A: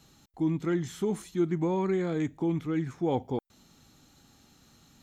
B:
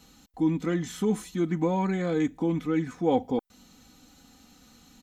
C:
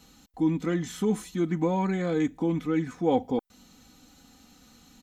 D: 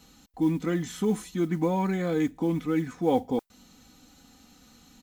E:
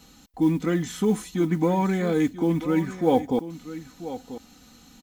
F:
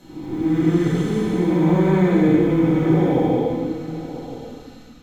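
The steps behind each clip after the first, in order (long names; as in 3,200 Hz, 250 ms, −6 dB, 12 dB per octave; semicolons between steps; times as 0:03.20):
comb filter 4 ms, depth 65%; level +2.5 dB
no processing that can be heard
noise that follows the level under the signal 33 dB
single-tap delay 988 ms −13.5 dB; level +3.5 dB
spectrum smeared in time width 474 ms; convolution reverb RT60 0.85 s, pre-delay 5 ms, DRR −10 dB; level −4 dB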